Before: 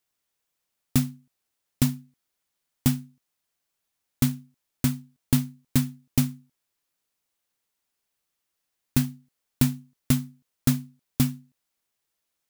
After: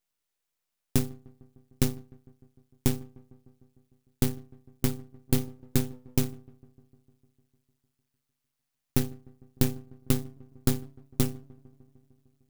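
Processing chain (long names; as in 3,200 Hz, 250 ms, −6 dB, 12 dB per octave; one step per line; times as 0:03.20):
feedback echo with a low-pass in the loop 151 ms, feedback 74%, low-pass 1,100 Hz, level −24 dB
half-wave rectification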